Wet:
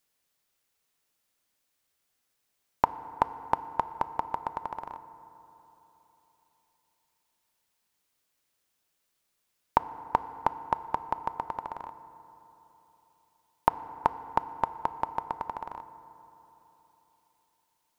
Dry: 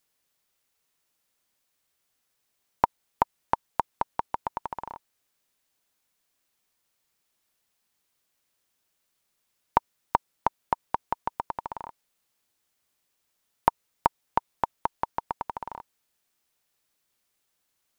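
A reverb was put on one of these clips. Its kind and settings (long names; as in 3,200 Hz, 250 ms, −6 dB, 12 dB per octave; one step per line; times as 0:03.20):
feedback delay network reverb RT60 3.7 s, high-frequency decay 0.4×, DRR 13 dB
level −1.5 dB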